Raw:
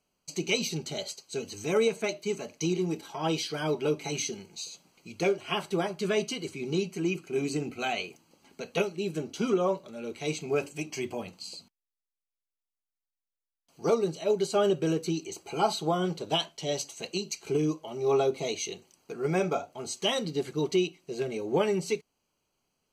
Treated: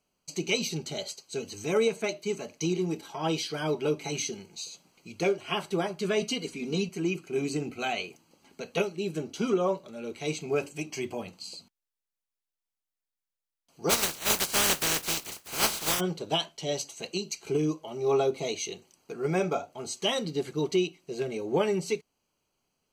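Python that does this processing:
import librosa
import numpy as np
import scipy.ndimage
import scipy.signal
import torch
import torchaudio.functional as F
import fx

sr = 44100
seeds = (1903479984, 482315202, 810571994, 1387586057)

y = fx.comb(x, sr, ms=4.2, depth=0.75, at=(6.21, 6.89))
y = fx.spec_flatten(y, sr, power=0.17, at=(13.89, 15.99), fade=0.02)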